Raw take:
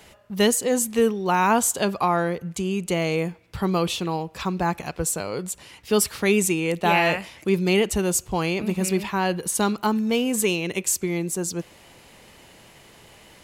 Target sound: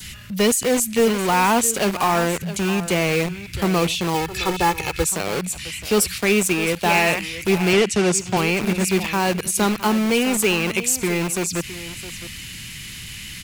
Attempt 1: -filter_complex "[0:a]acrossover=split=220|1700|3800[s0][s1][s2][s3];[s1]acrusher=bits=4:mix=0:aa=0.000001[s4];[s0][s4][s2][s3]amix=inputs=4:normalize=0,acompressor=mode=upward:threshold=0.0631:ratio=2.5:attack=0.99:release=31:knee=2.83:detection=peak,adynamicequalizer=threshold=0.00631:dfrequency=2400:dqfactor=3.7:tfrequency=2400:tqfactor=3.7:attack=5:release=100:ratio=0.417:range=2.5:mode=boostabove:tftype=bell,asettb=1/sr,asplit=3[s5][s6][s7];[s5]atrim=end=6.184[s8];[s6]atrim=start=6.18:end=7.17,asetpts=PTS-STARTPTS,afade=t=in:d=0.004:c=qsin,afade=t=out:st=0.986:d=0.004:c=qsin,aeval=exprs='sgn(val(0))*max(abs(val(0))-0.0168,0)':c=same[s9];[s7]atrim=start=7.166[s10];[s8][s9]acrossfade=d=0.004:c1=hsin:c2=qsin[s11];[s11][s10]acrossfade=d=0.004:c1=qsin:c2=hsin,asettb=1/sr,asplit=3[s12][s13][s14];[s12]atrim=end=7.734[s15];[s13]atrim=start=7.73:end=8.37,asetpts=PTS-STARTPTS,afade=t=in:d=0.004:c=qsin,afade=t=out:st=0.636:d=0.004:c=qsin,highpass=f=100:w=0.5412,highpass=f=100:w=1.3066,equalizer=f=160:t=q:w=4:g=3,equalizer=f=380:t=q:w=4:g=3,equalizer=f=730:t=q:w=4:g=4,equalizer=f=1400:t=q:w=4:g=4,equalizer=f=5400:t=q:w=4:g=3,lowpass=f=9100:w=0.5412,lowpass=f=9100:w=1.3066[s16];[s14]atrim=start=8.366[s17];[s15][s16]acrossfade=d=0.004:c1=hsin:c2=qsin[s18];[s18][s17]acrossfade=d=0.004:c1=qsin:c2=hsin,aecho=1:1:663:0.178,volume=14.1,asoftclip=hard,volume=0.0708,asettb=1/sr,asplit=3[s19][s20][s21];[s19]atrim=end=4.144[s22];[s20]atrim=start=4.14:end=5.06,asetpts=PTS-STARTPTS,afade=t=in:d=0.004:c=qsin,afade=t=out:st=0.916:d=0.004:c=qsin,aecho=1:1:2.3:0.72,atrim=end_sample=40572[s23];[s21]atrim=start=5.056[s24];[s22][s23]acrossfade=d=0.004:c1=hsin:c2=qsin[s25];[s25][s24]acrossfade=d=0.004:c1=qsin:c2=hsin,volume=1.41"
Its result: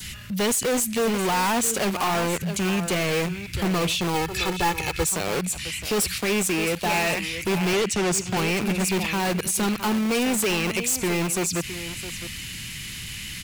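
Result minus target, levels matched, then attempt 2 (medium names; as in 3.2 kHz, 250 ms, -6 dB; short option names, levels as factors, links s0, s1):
overload inside the chain: distortion +10 dB
-filter_complex "[0:a]acrossover=split=220|1700|3800[s0][s1][s2][s3];[s1]acrusher=bits=4:mix=0:aa=0.000001[s4];[s0][s4][s2][s3]amix=inputs=4:normalize=0,acompressor=mode=upward:threshold=0.0631:ratio=2.5:attack=0.99:release=31:knee=2.83:detection=peak,adynamicequalizer=threshold=0.00631:dfrequency=2400:dqfactor=3.7:tfrequency=2400:tqfactor=3.7:attack=5:release=100:ratio=0.417:range=2.5:mode=boostabove:tftype=bell,asettb=1/sr,asplit=3[s5][s6][s7];[s5]atrim=end=6.184[s8];[s6]atrim=start=6.18:end=7.17,asetpts=PTS-STARTPTS,afade=t=in:d=0.004:c=qsin,afade=t=out:st=0.986:d=0.004:c=qsin,aeval=exprs='sgn(val(0))*max(abs(val(0))-0.0168,0)':c=same[s9];[s7]atrim=start=7.166[s10];[s8][s9]acrossfade=d=0.004:c1=hsin:c2=qsin[s11];[s11][s10]acrossfade=d=0.004:c1=qsin:c2=hsin,asettb=1/sr,asplit=3[s12][s13][s14];[s12]atrim=end=7.734[s15];[s13]atrim=start=7.73:end=8.37,asetpts=PTS-STARTPTS,afade=t=in:d=0.004:c=qsin,afade=t=out:st=0.636:d=0.004:c=qsin,highpass=f=100:w=0.5412,highpass=f=100:w=1.3066,equalizer=f=160:t=q:w=4:g=3,equalizer=f=380:t=q:w=4:g=3,equalizer=f=730:t=q:w=4:g=4,equalizer=f=1400:t=q:w=4:g=4,equalizer=f=5400:t=q:w=4:g=3,lowpass=f=9100:w=0.5412,lowpass=f=9100:w=1.3066[s16];[s14]atrim=start=8.366[s17];[s15][s16]acrossfade=d=0.004:c1=hsin:c2=qsin[s18];[s18][s17]acrossfade=d=0.004:c1=qsin:c2=hsin,aecho=1:1:663:0.178,volume=5.01,asoftclip=hard,volume=0.2,asettb=1/sr,asplit=3[s19][s20][s21];[s19]atrim=end=4.144[s22];[s20]atrim=start=4.14:end=5.06,asetpts=PTS-STARTPTS,afade=t=in:d=0.004:c=qsin,afade=t=out:st=0.916:d=0.004:c=qsin,aecho=1:1:2.3:0.72,atrim=end_sample=40572[s23];[s21]atrim=start=5.056[s24];[s22][s23]acrossfade=d=0.004:c1=hsin:c2=qsin[s25];[s25][s24]acrossfade=d=0.004:c1=qsin:c2=hsin,volume=1.41"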